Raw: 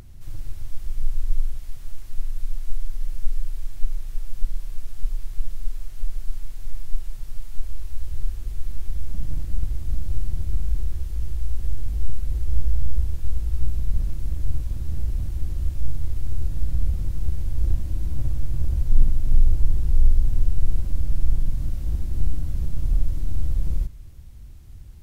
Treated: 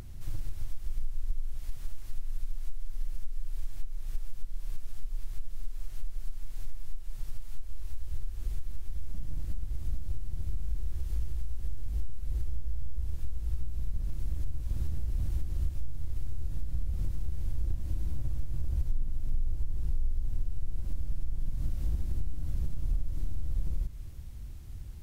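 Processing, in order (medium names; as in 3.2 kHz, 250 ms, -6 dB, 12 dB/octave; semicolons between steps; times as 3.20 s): compression, threshold -24 dBFS, peak gain reduction 17 dB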